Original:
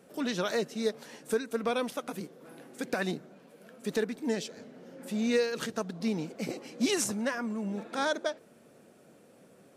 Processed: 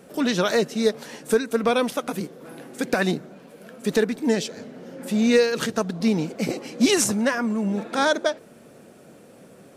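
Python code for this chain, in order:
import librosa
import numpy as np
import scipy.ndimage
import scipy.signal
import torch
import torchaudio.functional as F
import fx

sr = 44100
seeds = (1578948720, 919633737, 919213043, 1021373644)

y = fx.low_shelf(x, sr, hz=90.0, db=6.0)
y = F.gain(torch.from_numpy(y), 9.0).numpy()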